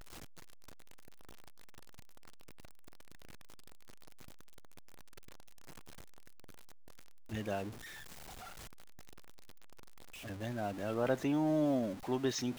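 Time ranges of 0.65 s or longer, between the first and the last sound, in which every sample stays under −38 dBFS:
0:07.68–0:10.26

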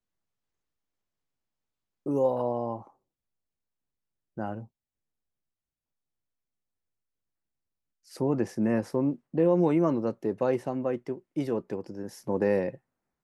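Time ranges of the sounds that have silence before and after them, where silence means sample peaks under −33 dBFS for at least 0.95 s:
0:02.06–0:02.77
0:04.38–0:04.60

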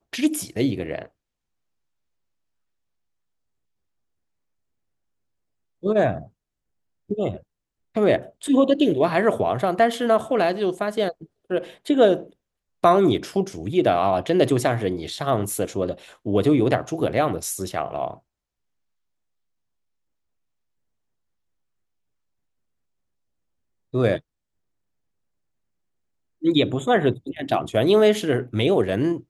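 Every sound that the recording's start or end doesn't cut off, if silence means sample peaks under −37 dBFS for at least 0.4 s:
0:05.83–0:06.25
0:07.10–0:07.38
0:07.95–0:12.26
0:12.83–0:18.14
0:23.94–0:24.19

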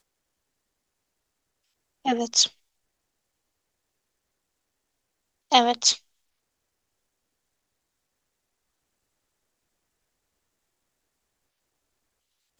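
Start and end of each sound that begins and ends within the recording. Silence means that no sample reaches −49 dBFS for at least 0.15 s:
0:02.05–0:02.52
0:05.51–0:05.99

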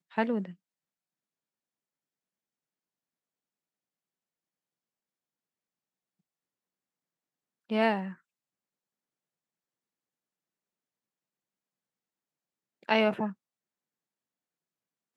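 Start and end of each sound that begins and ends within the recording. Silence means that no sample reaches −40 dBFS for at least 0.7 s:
0:07.70–0:08.13
0:12.88–0:13.32

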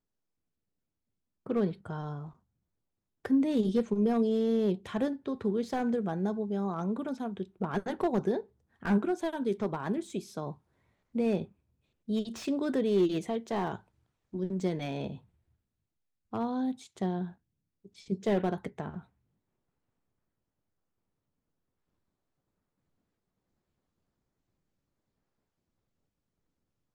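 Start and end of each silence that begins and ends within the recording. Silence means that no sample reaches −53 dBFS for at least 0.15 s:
0:02.33–0:03.25
0:08.46–0:08.82
0:10.58–0:11.14
0:11.51–0:12.08
0:13.81–0:14.33
0:15.20–0:16.33
0:17.34–0:17.85

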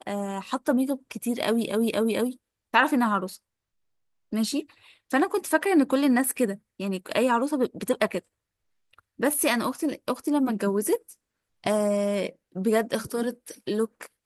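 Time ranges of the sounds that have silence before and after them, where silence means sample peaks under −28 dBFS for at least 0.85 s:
0:04.33–0:08.19

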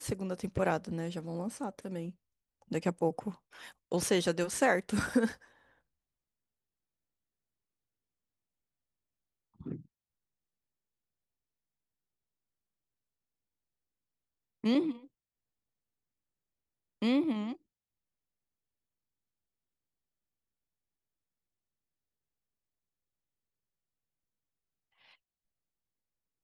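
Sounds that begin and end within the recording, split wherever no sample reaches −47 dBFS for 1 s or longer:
0:09.61–0:09.80
0:14.64–0:15.05
0:17.02–0:17.56

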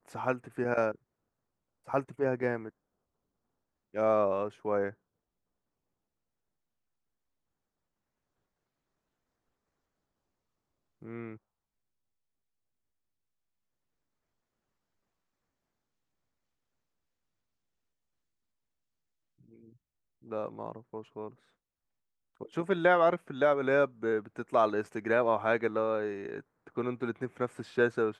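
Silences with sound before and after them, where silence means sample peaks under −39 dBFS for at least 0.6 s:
0:00.95–0:01.89
0:02.69–0:03.95
0:04.90–0:11.02
0:11.34–0:20.31
0:21.28–0:22.41

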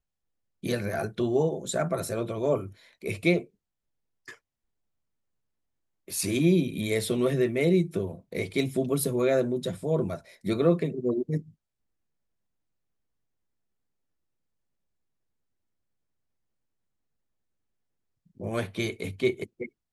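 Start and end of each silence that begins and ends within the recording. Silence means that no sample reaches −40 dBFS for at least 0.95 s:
0:04.33–0:06.08
0:11.40–0:18.40

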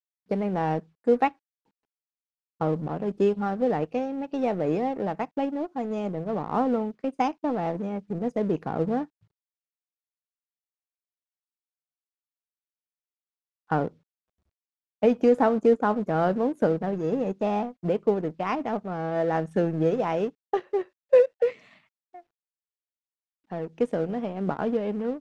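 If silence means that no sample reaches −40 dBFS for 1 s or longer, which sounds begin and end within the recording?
0:02.61–0:09.05
0:13.70–0:13.88
0:15.02–0:22.19

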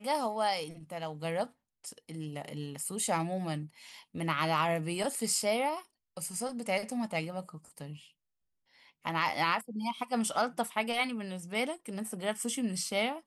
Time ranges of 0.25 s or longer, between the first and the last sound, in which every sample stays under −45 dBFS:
0:01.47–0:01.84
0:05.82–0:06.17
0:08.04–0:09.05

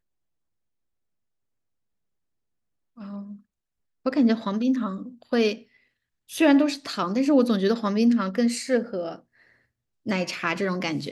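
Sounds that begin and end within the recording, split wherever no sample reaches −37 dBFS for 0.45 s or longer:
0:02.98–0:03.35
0:04.06–0:05.58
0:06.30–0:09.16

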